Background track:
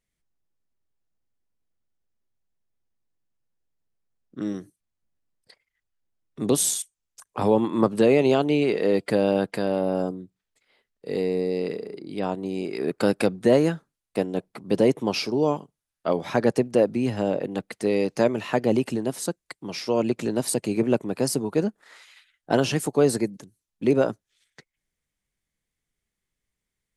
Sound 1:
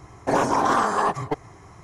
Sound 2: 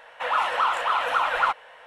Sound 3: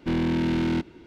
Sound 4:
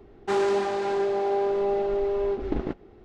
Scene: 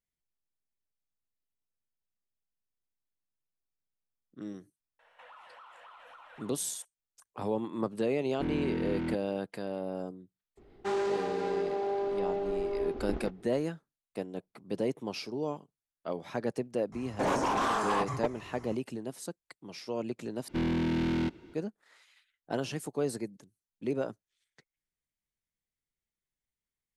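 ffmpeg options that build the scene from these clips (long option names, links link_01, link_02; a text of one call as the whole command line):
ffmpeg -i bed.wav -i cue0.wav -i cue1.wav -i cue2.wav -i cue3.wav -filter_complex "[3:a]asplit=2[link_01][link_02];[0:a]volume=-12dB[link_03];[2:a]acompressor=threshold=-34dB:ratio=6:attack=3.2:release=140:knee=1:detection=peak[link_04];[link_01]acrossover=split=3000[link_05][link_06];[link_06]acompressor=threshold=-55dB:ratio=4:attack=1:release=60[link_07];[link_05][link_07]amix=inputs=2:normalize=0[link_08];[1:a]asoftclip=type=tanh:threshold=-21dB[link_09];[link_03]asplit=2[link_10][link_11];[link_10]atrim=end=20.484[link_12];[link_02]atrim=end=1.06,asetpts=PTS-STARTPTS,volume=-5dB[link_13];[link_11]atrim=start=21.536[link_14];[link_04]atrim=end=1.86,asetpts=PTS-STARTPTS,volume=-16.5dB,afade=type=in:duration=0.004:curve=hsin,afade=type=out:start_time=1.856:duration=0.004:curve=hsin,adelay=4990[link_15];[link_08]atrim=end=1.06,asetpts=PTS-STARTPTS,volume=-9dB,afade=type=in:duration=0.004:curve=hsin,afade=type=out:start_time=1.056:duration=0.004:curve=hsin,adelay=367794S[link_16];[4:a]atrim=end=3.04,asetpts=PTS-STARTPTS,volume=-7dB,afade=type=in:duration=0.004:curve=hsin,afade=type=out:start_time=3.036:duration=0.004:curve=hsin,adelay=10570[link_17];[link_09]atrim=end=1.83,asetpts=PTS-STARTPTS,volume=-4dB,afade=type=in:duration=0.004:curve=hsin,afade=type=out:start_time=1.826:duration=0.004:curve=hsin,adelay=16920[link_18];[link_12][link_13]acrossfade=duration=0.004:curve1=hsin:curve2=hsin[link_19];[link_19][link_14]acrossfade=duration=0.004:curve1=hsin:curve2=hsin[link_20];[link_20][link_15][link_16][link_17][link_18]amix=inputs=5:normalize=0" out.wav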